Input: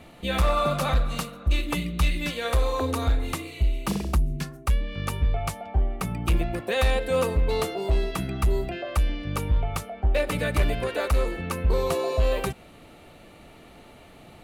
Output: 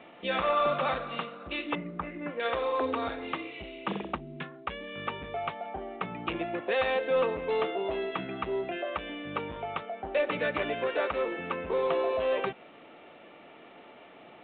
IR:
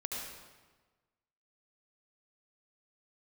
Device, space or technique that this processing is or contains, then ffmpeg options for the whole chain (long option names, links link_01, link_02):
telephone: -filter_complex "[0:a]asettb=1/sr,asplit=3[link_01][link_02][link_03];[link_01]atrim=end=1.754[link_04];[link_02]atrim=start=1.75:end=2.4,asetpts=PTS-STARTPTS,afade=type=in:duration=0.004:curve=qsin,afade=type=out:start_time=0.646:duration=0.004:curve=qsin,lowpass=frequency=1600:width=0.5412,lowpass=frequency=1600:width=1.3066[link_05];[link_03]atrim=start=2.396[link_06];[link_04][link_05]acrossfade=duration=0.004:curve1=hsin:curve2=qsin[link_07];[link_07][link_06]acrossfade=duration=0.004:curve1=qsin:curve2=hsin,highpass=310,lowpass=3600,asoftclip=type=tanh:threshold=-17.5dB" -ar 8000 -c:a pcm_mulaw